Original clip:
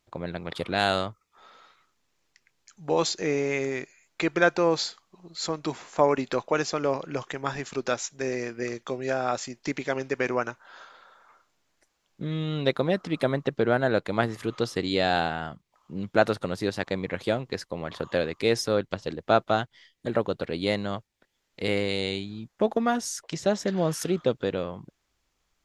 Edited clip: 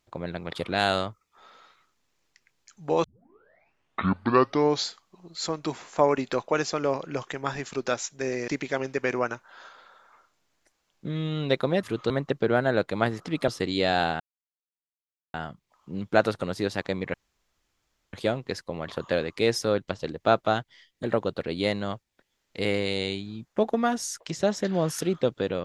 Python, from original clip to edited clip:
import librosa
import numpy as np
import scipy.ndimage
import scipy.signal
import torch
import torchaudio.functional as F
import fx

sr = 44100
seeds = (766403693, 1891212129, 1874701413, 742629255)

y = fx.edit(x, sr, fx.tape_start(start_s=3.04, length_s=1.83),
    fx.cut(start_s=8.48, length_s=1.16),
    fx.swap(start_s=12.99, length_s=0.28, other_s=14.37, other_length_s=0.27),
    fx.insert_silence(at_s=15.36, length_s=1.14),
    fx.insert_room_tone(at_s=17.16, length_s=0.99), tone=tone)